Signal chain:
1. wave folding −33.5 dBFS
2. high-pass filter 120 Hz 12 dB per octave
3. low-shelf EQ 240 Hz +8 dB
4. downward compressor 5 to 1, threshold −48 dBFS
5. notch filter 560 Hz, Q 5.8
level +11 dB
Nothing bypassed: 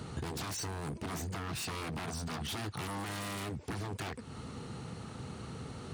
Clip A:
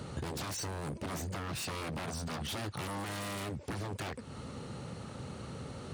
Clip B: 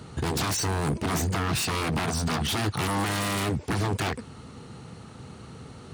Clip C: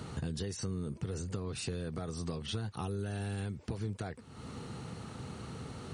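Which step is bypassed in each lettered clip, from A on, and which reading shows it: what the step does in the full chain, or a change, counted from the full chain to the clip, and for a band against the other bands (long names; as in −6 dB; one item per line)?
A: 5, 500 Hz band +1.5 dB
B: 4, average gain reduction 8.0 dB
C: 1, change in crest factor +3.5 dB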